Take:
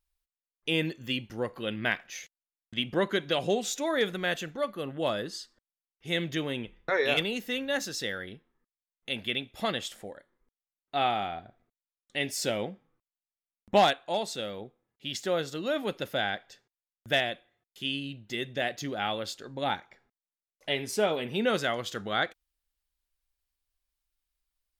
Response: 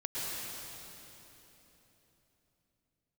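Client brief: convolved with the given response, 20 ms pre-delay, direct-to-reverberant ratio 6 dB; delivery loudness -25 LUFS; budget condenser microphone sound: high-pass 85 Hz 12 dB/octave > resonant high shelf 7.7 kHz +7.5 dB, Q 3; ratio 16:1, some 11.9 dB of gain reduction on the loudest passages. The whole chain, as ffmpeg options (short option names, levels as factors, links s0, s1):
-filter_complex "[0:a]acompressor=threshold=0.0398:ratio=16,asplit=2[s0][s1];[1:a]atrim=start_sample=2205,adelay=20[s2];[s1][s2]afir=irnorm=-1:irlink=0,volume=0.282[s3];[s0][s3]amix=inputs=2:normalize=0,highpass=85,highshelf=f=7700:t=q:w=3:g=7.5,volume=2.99"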